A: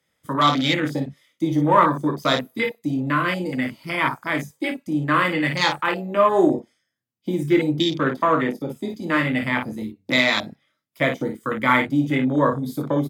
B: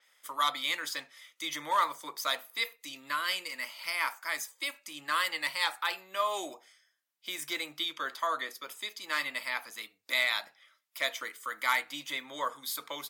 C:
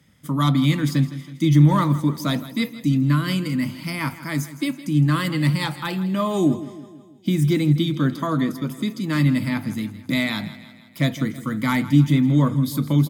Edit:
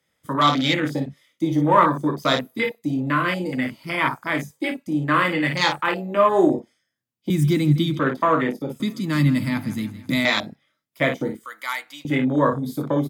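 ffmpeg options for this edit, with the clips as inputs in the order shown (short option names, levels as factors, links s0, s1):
-filter_complex "[2:a]asplit=2[s0][s1];[0:a]asplit=4[s2][s3][s4][s5];[s2]atrim=end=7.302[s6];[s0]atrim=start=7.298:end=7.992[s7];[s3]atrim=start=7.988:end=8.802[s8];[s1]atrim=start=8.798:end=10.252[s9];[s4]atrim=start=10.248:end=11.452[s10];[1:a]atrim=start=11.448:end=12.052[s11];[s5]atrim=start=12.048[s12];[s6][s7]acrossfade=d=0.004:c1=hsin:c2=hsin[s13];[s13][s8]acrossfade=d=0.004:c1=hsin:c2=hsin[s14];[s14][s9]acrossfade=d=0.004:c1=hsin:c2=hsin[s15];[s15][s10]acrossfade=d=0.004:c1=hsin:c2=hsin[s16];[s16][s11]acrossfade=d=0.004:c1=hsin:c2=hsin[s17];[s17][s12]acrossfade=d=0.004:c1=hsin:c2=hsin"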